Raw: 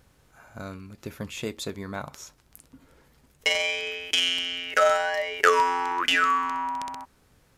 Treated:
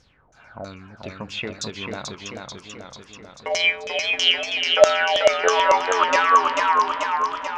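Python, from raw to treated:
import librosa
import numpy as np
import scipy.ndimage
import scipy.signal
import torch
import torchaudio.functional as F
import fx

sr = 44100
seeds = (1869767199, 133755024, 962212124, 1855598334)

y = fx.vibrato(x, sr, rate_hz=3.4, depth_cents=10.0)
y = fx.filter_lfo_lowpass(y, sr, shape='saw_down', hz=3.1, low_hz=580.0, high_hz=6400.0, q=5.4)
y = fx.echo_warbled(y, sr, ms=439, feedback_pct=62, rate_hz=2.8, cents=91, wet_db=-4)
y = y * librosa.db_to_amplitude(-1.0)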